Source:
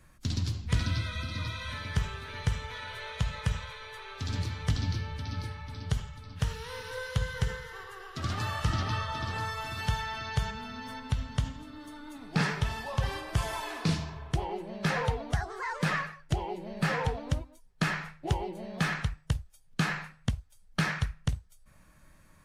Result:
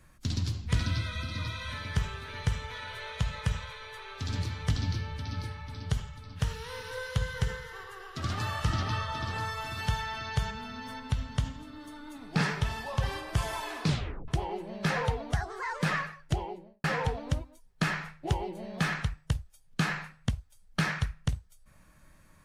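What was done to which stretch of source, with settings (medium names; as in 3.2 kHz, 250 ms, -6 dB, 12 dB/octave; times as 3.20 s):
13.87 s: tape stop 0.41 s
16.32–16.84 s: studio fade out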